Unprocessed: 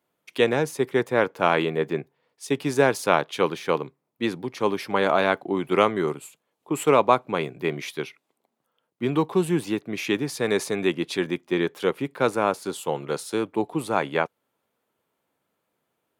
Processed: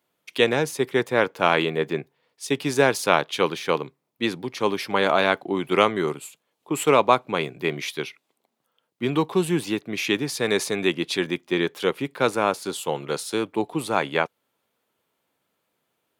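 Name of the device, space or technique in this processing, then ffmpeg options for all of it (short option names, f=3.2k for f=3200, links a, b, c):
presence and air boost: -af "equalizer=f=3.7k:t=o:w=1.9:g=5,highshelf=f=9.1k:g=4"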